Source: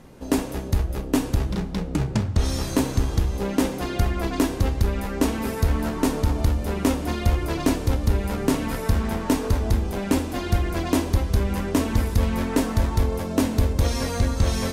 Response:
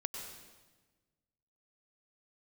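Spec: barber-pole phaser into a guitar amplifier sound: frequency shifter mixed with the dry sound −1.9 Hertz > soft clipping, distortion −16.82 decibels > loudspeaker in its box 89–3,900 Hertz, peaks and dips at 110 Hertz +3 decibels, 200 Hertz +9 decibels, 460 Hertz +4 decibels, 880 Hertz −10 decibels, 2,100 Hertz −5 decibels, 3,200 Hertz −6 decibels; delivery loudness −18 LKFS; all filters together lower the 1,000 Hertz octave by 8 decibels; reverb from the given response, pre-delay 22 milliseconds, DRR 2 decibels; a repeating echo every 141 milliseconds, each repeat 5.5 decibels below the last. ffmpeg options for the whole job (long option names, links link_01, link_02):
-filter_complex "[0:a]equalizer=frequency=1000:width_type=o:gain=-5.5,aecho=1:1:141|282|423|564|705|846|987:0.531|0.281|0.149|0.079|0.0419|0.0222|0.0118,asplit=2[link_01][link_02];[1:a]atrim=start_sample=2205,adelay=22[link_03];[link_02][link_03]afir=irnorm=-1:irlink=0,volume=-2dB[link_04];[link_01][link_04]amix=inputs=2:normalize=0,asplit=2[link_05][link_06];[link_06]afreqshift=-1.9[link_07];[link_05][link_07]amix=inputs=2:normalize=1,asoftclip=threshold=-15dB,highpass=89,equalizer=frequency=110:width_type=q:width=4:gain=3,equalizer=frequency=200:width_type=q:width=4:gain=9,equalizer=frequency=460:width_type=q:width=4:gain=4,equalizer=frequency=880:width_type=q:width=4:gain=-10,equalizer=frequency=2100:width_type=q:width=4:gain=-5,equalizer=frequency=3200:width_type=q:width=4:gain=-6,lowpass=frequency=3900:width=0.5412,lowpass=frequency=3900:width=1.3066,volume=7dB"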